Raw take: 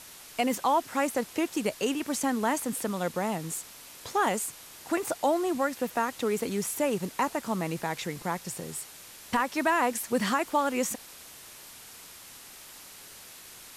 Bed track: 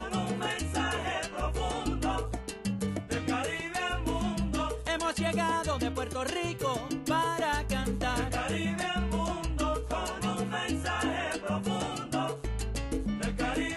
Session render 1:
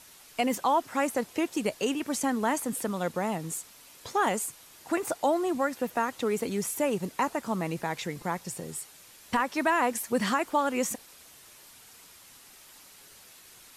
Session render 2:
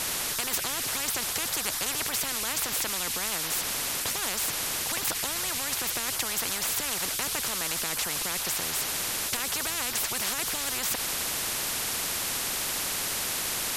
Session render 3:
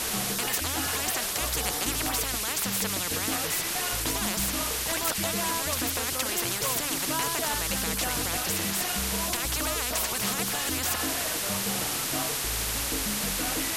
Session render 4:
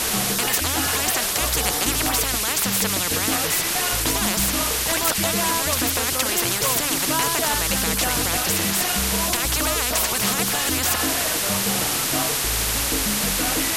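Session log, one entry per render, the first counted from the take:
denoiser 6 dB, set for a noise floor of -48 dBFS
in parallel at +0.5 dB: limiter -24.5 dBFS, peak gain reduction 10 dB; on the sum: spectral compressor 10:1
add bed track -3.5 dB
gain +7 dB

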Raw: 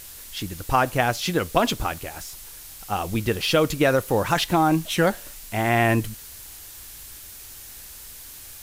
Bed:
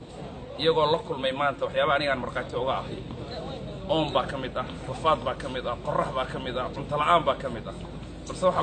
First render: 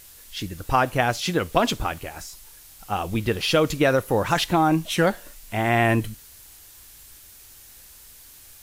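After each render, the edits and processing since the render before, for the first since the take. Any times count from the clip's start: noise print and reduce 6 dB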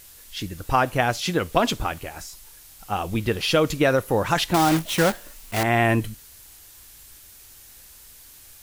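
4.54–5.64 block floating point 3-bit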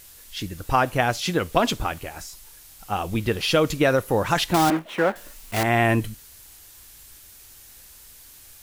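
4.7–5.16 three-band isolator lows -18 dB, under 220 Hz, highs -19 dB, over 2400 Hz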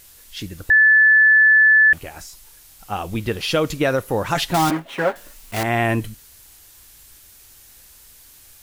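0.7–1.93 bleep 1740 Hz -9 dBFS; 4.34–5.16 comb 7.3 ms, depth 62%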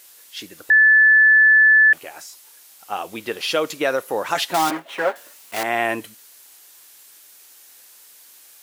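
HPF 390 Hz 12 dB/oct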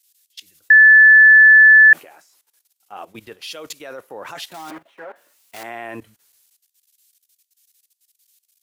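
level quantiser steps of 16 dB; three-band expander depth 100%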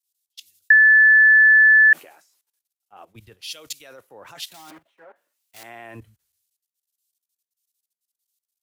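compressor 5:1, threshold -13 dBFS, peak gain reduction 7 dB; three-band expander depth 70%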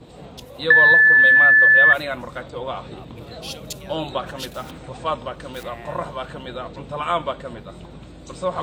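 add bed -1.5 dB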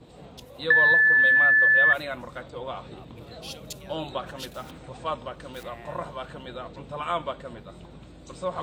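gain -6 dB

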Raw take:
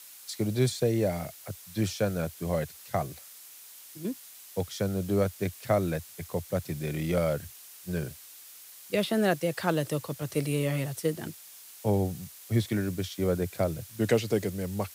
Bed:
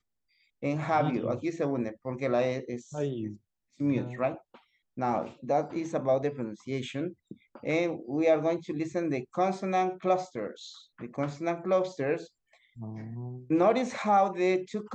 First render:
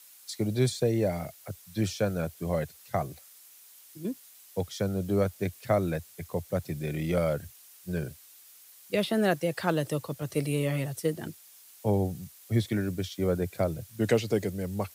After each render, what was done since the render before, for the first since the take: denoiser 6 dB, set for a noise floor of -49 dBFS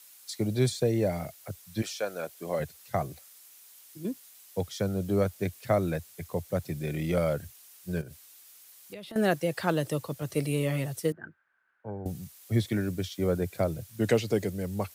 1.81–2.59 HPF 710 Hz -> 250 Hz; 8.01–9.16 compressor, threshold -40 dBFS; 11.12–12.06 ladder low-pass 1600 Hz, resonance 85%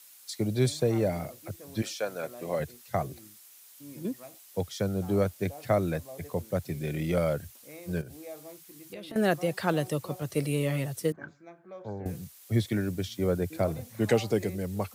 add bed -19.5 dB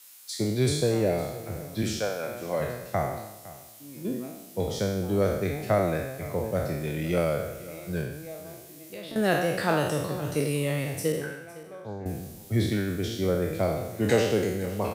spectral trails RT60 0.95 s; echo 0.509 s -18 dB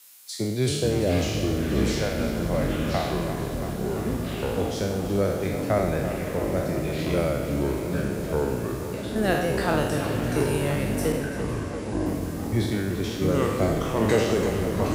tape echo 0.341 s, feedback 83%, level -9 dB, low-pass 4500 Hz; echoes that change speed 0.265 s, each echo -6 st, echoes 3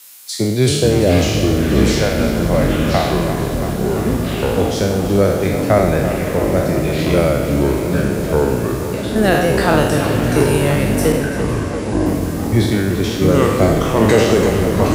gain +10 dB; limiter -1 dBFS, peak gain reduction 2.5 dB

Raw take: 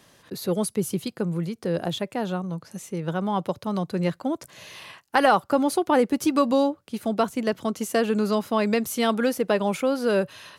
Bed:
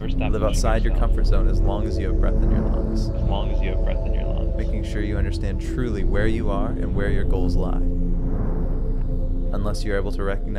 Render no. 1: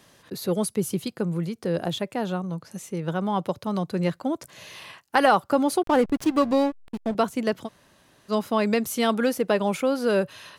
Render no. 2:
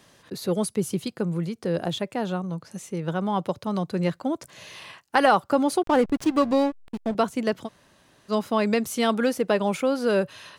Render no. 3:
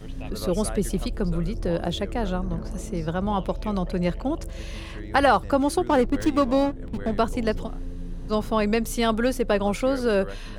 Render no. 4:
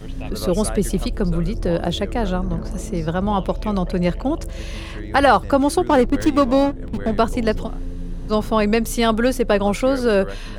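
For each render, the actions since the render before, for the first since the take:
5.83–7.15 backlash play -25 dBFS; 7.66–8.31 room tone, crossfade 0.06 s
bell 12000 Hz -7.5 dB 0.22 oct
add bed -12 dB
gain +5 dB; limiter -2 dBFS, peak gain reduction 2 dB

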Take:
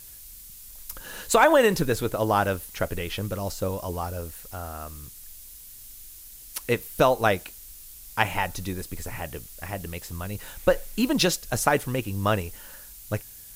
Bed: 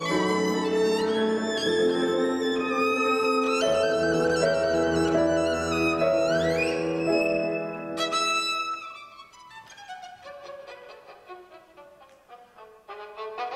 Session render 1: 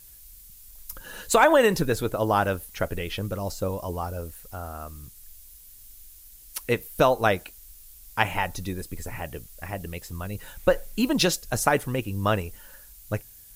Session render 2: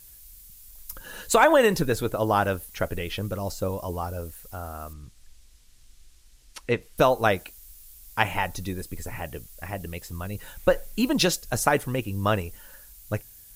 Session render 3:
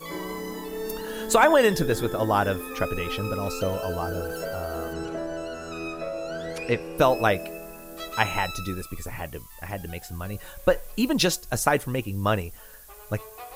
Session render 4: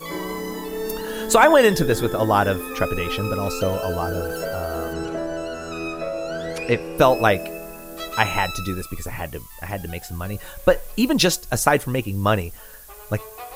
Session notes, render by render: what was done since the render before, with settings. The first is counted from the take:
denoiser 6 dB, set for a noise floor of -45 dBFS
4.93–6.98 air absorption 82 m
add bed -9.5 dB
gain +4.5 dB; limiter -1 dBFS, peak gain reduction 1 dB

